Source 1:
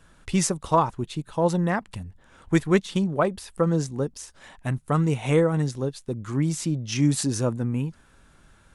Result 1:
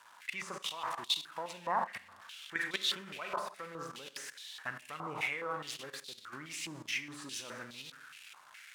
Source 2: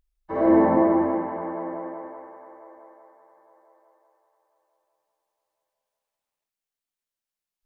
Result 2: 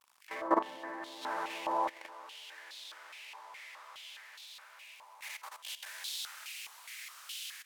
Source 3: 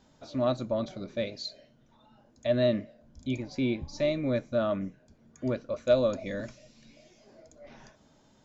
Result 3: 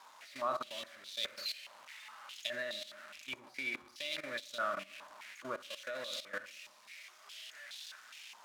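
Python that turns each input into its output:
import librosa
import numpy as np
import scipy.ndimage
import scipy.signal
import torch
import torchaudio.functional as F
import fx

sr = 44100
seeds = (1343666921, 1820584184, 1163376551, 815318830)

y = x + 0.5 * 10.0 ** (-24.0 / 20.0) * np.diff(np.sign(x), prepend=np.sign(x[:1]))
y = fx.rider(y, sr, range_db=3, speed_s=2.0)
y = fx.rev_schroeder(y, sr, rt60_s=0.98, comb_ms=30, drr_db=6.5)
y = fx.level_steps(y, sr, step_db=15)
y = fx.filter_held_bandpass(y, sr, hz=4.8, low_hz=980.0, high_hz=3700.0)
y = y * 10.0 ** (9.0 / 20.0)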